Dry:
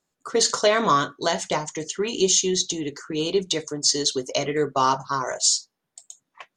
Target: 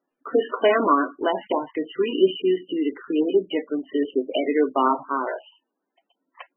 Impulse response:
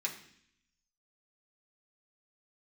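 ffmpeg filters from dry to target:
-af "lowshelf=frequency=190:width_type=q:width=3:gain=-13" -ar 22050 -c:a libmp3lame -b:a 8k

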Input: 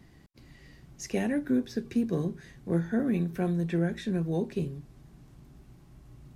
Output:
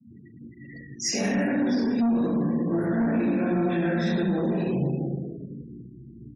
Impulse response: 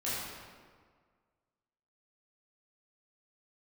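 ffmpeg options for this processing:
-filter_complex "[0:a]highpass=frequency=90:width=0.5412,highpass=frequency=90:width=1.3066,aecho=1:1:21|73:0.447|0.473,asettb=1/sr,asplit=3[link_01][link_02][link_03];[link_01]atrim=end=1.634[link_04];[link_02]atrim=start=1.63:end=3.88,asetpts=PTS-STARTPTS,afade=type=in:duration=0.004:curve=qsin,afade=type=out:start_time=2.246:duration=0.004:curve=qsin,aeval=exprs='sgn(val(0))*max(abs(val(0))-0.00335,0)':channel_layout=same[link_05];[link_03]atrim=start=3.876[link_06];[link_04][link_05]acrossfade=duration=0.004:curve1=hsin:curve2=qsin[link_07];[link_07][link_06]acrossfade=duration=0.004:curve1=qsin:curve2=hsin,bandreject=frequency=50:width_type=h:width=6,bandreject=frequency=100:width_type=h:width=6,bandreject=frequency=150:width_type=h:width=6,bandreject=frequency=200:width_type=h:width=6[link_08];[1:a]atrim=start_sample=2205,asetrate=39249,aresample=44100[link_09];[link_08][link_09]afir=irnorm=-1:irlink=0,asoftclip=type=tanh:threshold=-15dB,afftfilt=real='re*gte(hypot(re,im),0.00794)':imag='im*gte(hypot(re,im),0.00794)':win_size=1024:overlap=0.75,lowshelf=frequency=130:gain=-8,alimiter=level_in=0.5dB:limit=-24dB:level=0:latency=1:release=69,volume=-0.5dB,superequalizer=7b=0.501:14b=2.24,volume=7dB"

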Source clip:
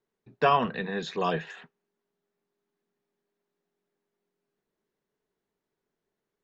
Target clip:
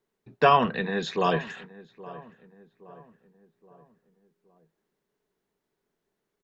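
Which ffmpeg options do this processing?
ffmpeg -i in.wav -filter_complex "[0:a]asplit=2[link_01][link_02];[link_02]adelay=820,lowpass=frequency=1300:poles=1,volume=-18dB,asplit=2[link_03][link_04];[link_04]adelay=820,lowpass=frequency=1300:poles=1,volume=0.5,asplit=2[link_05][link_06];[link_06]adelay=820,lowpass=frequency=1300:poles=1,volume=0.5,asplit=2[link_07][link_08];[link_08]adelay=820,lowpass=frequency=1300:poles=1,volume=0.5[link_09];[link_01][link_03][link_05][link_07][link_09]amix=inputs=5:normalize=0,volume=3.5dB" out.wav

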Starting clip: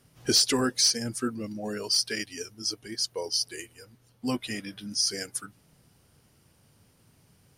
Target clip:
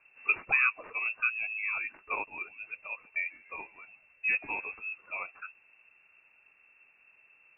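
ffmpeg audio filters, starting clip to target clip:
ffmpeg -i in.wav -filter_complex "[0:a]lowpass=frequency=2400:width_type=q:width=0.5098,lowpass=frequency=2400:width_type=q:width=0.6013,lowpass=frequency=2400:width_type=q:width=0.9,lowpass=frequency=2400:width_type=q:width=2.563,afreqshift=-2800,asettb=1/sr,asplit=3[link_01][link_02][link_03];[link_01]atrim=end=2.184[link_04];[link_02]atrim=start=2.18:end=4.79,asetpts=PTS-STARTPTS,afade=type=in:duration=0.004:curve=qsin,afade=type=out:start_time=2.606:duration=0.004:curve=qsin,asplit=5[link_05][link_06][link_07][link_08][link_09];[link_06]adelay=144,afreqshift=-100,volume=-23dB[link_10];[link_07]adelay=288,afreqshift=-200,volume=-28.5dB[link_11];[link_08]adelay=432,afreqshift=-300,volume=-34dB[link_12];[link_09]adelay=576,afreqshift=-400,volume=-39.5dB[link_13];[link_05][link_10][link_11][link_12][link_13]amix=inputs=5:normalize=0,atrim=end_sample=115101[link_14];[link_03]atrim=start=4.786[link_15];[link_04][link_14]acrossfade=duration=0.004:curve1=hsin:curve2=qsin[link_16];[link_16][link_15]acrossfade=duration=0.004:curve1=qsin:curve2=hsin" out.wav

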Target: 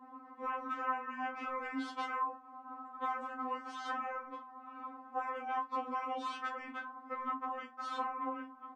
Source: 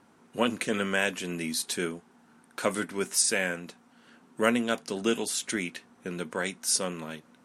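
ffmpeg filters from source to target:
ffmpeg -i in.wav -af "highpass=120,afftfilt=real='re*lt(hypot(re,im),0.0631)':imag='im*lt(hypot(re,im),0.0631)':win_size=1024:overlap=0.75,lowpass=frequency=1300:width_type=q:width=4.8,acompressor=threshold=-42dB:ratio=6,asetrate=37485,aresample=44100,agate=range=-33dB:threshold=-52dB:ratio=3:detection=peak,aecho=1:1:26|48:0.299|0.158,afftfilt=real='re*3.46*eq(mod(b,12),0)':imag='im*3.46*eq(mod(b,12),0)':win_size=2048:overlap=0.75,volume=10dB" out.wav

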